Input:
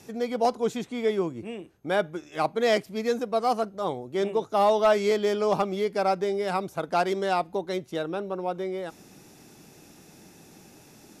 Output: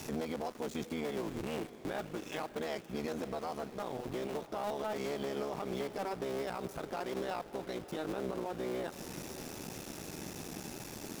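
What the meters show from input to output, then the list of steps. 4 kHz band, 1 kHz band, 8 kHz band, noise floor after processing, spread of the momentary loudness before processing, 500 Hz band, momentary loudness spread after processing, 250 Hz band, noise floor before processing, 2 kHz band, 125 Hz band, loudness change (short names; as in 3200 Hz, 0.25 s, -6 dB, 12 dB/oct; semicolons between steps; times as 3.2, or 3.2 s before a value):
-9.5 dB, -14.0 dB, -2.5 dB, -51 dBFS, 9 LU, -13.0 dB, 6 LU, -7.5 dB, -53 dBFS, -10.5 dB, -6.0 dB, -13.0 dB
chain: cycle switcher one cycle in 3, muted; compressor 5:1, threshold -39 dBFS, peak gain reduction 18.5 dB; limiter -37 dBFS, peak gain reduction 11 dB; sample gate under -56.5 dBFS; diffused feedback echo 0.612 s, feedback 59%, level -15 dB; gain +8.5 dB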